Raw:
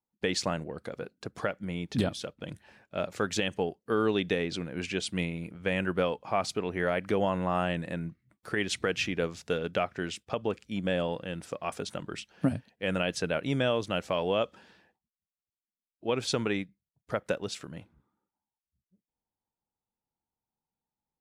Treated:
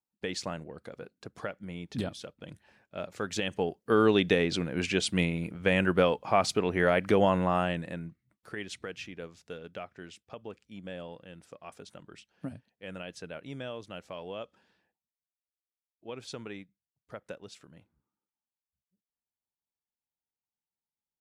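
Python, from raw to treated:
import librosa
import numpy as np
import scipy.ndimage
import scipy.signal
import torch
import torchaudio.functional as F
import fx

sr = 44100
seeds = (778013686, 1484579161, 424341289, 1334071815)

y = fx.gain(x, sr, db=fx.line((3.13, -5.5), (3.96, 4.0), (7.33, 4.0), (8.09, -5.0), (9.07, -12.0)))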